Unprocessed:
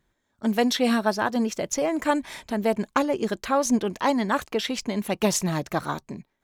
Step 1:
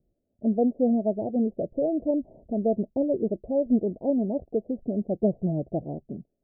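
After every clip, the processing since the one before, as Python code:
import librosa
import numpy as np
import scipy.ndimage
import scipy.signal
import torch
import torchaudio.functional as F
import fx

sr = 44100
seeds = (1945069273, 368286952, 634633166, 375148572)

y = scipy.signal.sosfilt(scipy.signal.butter(12, 690.0, 'lowpass', fs=sr, output='sos'), x)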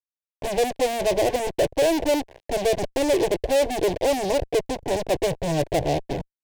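y = fx.self_delay(x, sr, depth_ms=0.33)
y = fx.fuzz(y, sr, gain_db=42.0, gate_db=-45.0)
y = fx.fixed_phaser(y, sr, hz=530.0, stages=4)
y = y * librosa.db_to_amplitude(-2.5)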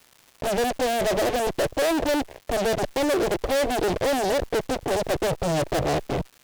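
y = fx.tube_stage(x, sr, drive_db=27.0, bias=0.5)
y = fx.dmg_crackle(y, sr, seeds[0], per_s=370.0, level_db=-46.0)
y = y * librosa.db_to_amplitude(7.0)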